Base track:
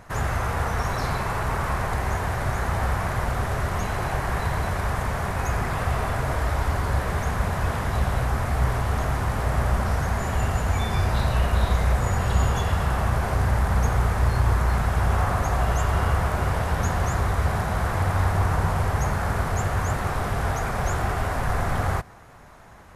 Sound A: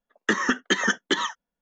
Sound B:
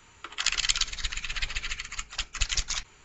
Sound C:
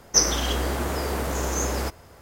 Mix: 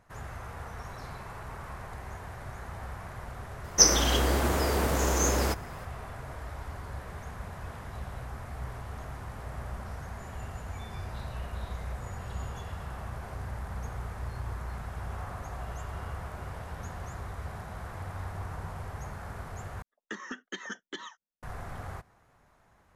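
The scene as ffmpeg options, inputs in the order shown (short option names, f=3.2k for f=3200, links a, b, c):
-filter_complex "[0:a]volume=-16dB[a];[1:a]bandreject=f=7.8k:w=24[b];[a]asplit=2[c][d];[c]atrim=end=19.824[e];[b]atrim=end=1.61,asetpts=PTS-STARTPTS,volume=-17dB[f];[d]atrim=start=21.426[g];[3:a]atrim=end=2.21,asetpts=PTS-STARTPTS,afade=t=in:d=0.004:c=hsin,afade=t=out:st=2.206:d=0.004:c=hsin,adelay=3640[h];[e][f]acrossfade=d=0.004:c1=hsin:c2=hsin[i];[i][g]acrossfade=d=0.004:c1=hsin:c2=hsin[j];[j][h]amix=inputs=2:normalize=0"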